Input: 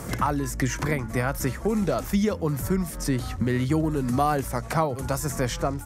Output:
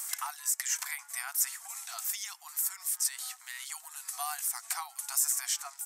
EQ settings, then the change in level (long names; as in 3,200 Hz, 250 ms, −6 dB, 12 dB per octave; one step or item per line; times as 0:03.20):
linear-phase brick-wall high-pass 680 Hz
first difference
parametric band 8,000 Hz +5.5 dB 0.32 octaves
+3.5 dB